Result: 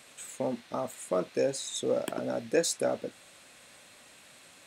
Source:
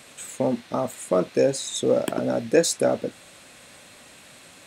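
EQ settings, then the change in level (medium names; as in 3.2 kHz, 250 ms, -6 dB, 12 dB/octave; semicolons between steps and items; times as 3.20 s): bass shelf 390 Hz -5 dB; -6.0 dB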